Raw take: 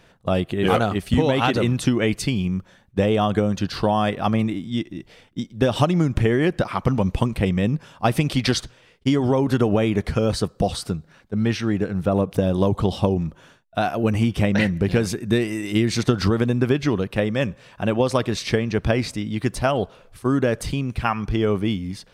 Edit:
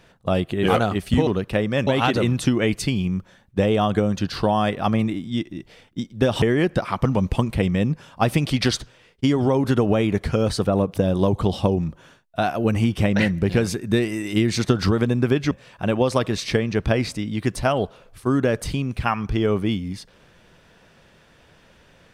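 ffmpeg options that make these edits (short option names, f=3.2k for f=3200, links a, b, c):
-filter_complex "[0:a]asplit=6[a][b][c][d][e][f];[a]atrim=end=1.272[g];[b]atrim=start=16.898:end=17.502[h];[c]atrim=start=1.268:end=5.822[i];[d]atrim=start=6.248:end=10.482[j];[e]atrim=start=12.038:end=16.902[k];[f]atrim=start=17.498[l];[g][h]acrossfade=d=0.004:c1=hsin:c2=hsin[m];[m][i]acrossfade=d=0.004:c1=hsin:c2=hsin[n];[n][j]acrossfade=d=0.004:c1=hsin:c2=hsin[o];[o][k]acrossfade=d=0.004:c1=hsin:c2=hsin[p];[p][l]acrossfade=d=0.004:c1=hsin:c2=hsin"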